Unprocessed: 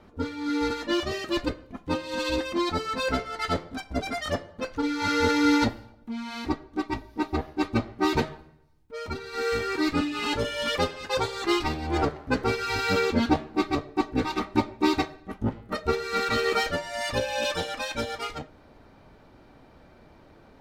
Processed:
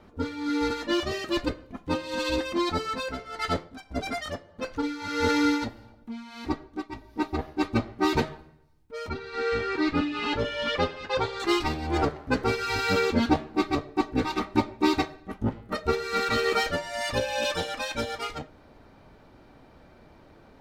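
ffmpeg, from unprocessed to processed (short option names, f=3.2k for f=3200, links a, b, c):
-filter_complex "[0:a]asettb=1/sr,asplit=3[a][b][c];[a]atrim=end=2.854[d];[b]atrim=start=2.85:end=7.39,asetpts=PTS-STARTPTS,afade=t=in:d=0.004:c=qsin,afade=t=out:st=4.536:d=0.004:c=qsin,tremolo=f=1.6:d=0.63[e];[c]atrim=start=7.386[f];[d][e]acrossfade=d=0.004:c1=hsin:c2=qsin[g];[g][f]acrossfade=d=0.004:c1=qsin:c2=hsin,asettb=1/sr,asplit=3[h][i][j];[h]atrim=end=9.094[k];[i]atrim=start=9.09:end=11.4,asetpts=PTS-STARTPTS,afade=t=in:d=0.004:c=qsin,afade=t=out:st=2.306:d=0.004:c=qsin,lowpass=4k[l];[j]atrim=start=11.396[m];[k][l]acrossfade=d=0.004:c1=hsin:c2=qsin[n];[n][m]acrossfade=d=0.004:c1=qsin:c2=hsin"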